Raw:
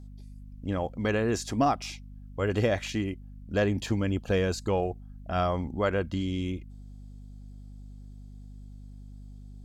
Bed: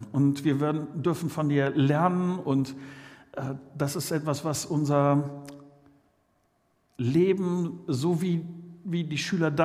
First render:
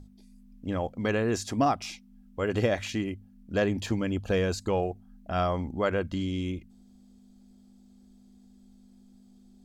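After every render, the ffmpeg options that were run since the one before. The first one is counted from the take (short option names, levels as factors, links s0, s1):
-af "bandreject=f=50:t=h:w=6,bandreject=f=100:t=h:w=6,bandreject=f=150:t=h:w=6"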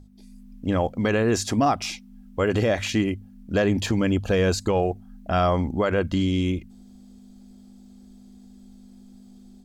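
-af "dynaudnorm=f=120:g=3:m=2.51,alimiter=limit=0.237:level=0:latency=1:release=48"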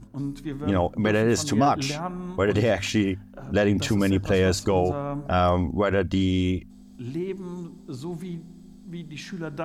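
-filter_complex "[1:a]volume=0.398[s0];[0:a][s0]amix=inputs=2:normalize=0"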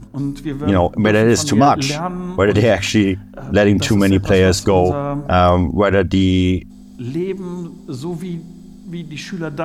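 -af "volume=2.66,alimiter=limit=0.708:level=0:latency=1"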